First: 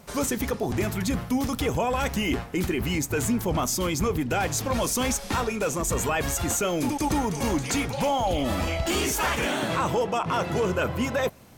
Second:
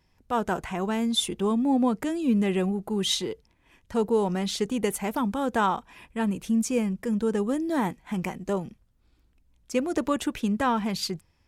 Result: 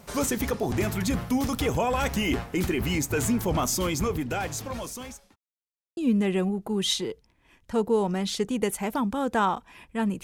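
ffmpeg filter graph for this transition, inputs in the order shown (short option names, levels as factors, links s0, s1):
-filter_complex "[0:a]apad=whole_dur=10.23,atrim=end=10.23,asplit=2[s0][s1];[s0]atrim=end=5.36,asetpts=PTS-STARTPTS,afade=t=out:st=3.77:d=1.59[s2];[s1]atrim=start=5.36:end=5.97,asetpts=PTS-STARTPTS,volume=0[s3];[1:a]atrim=start=2.18:end=6.44,asetpts=PTS-STARTPTS,afade=t=in:d=0.004:c=hsin[s4];[s2][s3][s4]concat=n=3:v=0:a=1"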